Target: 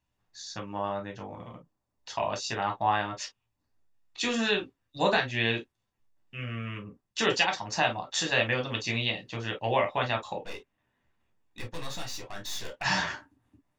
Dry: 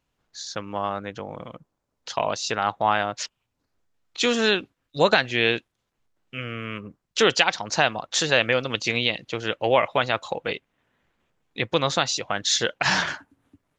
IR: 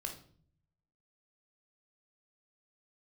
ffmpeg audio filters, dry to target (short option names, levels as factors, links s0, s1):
-filter_complex "[0:a]asplit=3[s0][s1][s2];[s0]afade=t=out:st=10.42:d=0.02[s3];[s1]aeval=exprs='(tanh(28.2*val(0)+0.4)-tanh(0.4))/28.2':c=same,afade=t=in:st=10.42:d=0.02,afade=t=out:st=12.81:d=0.02[s4];[s2]afade=t=in:st=12.81:d=0.02[s5];[s3][s4][s5]amix=inputs=3:normalize=0[s6];[1:a]atrim=start_sample=2205,atrim=end_sample=4410,asetrate=74970,aresample=44100[s7];[s6][s7]afir=irnorm=-1:irlink=0"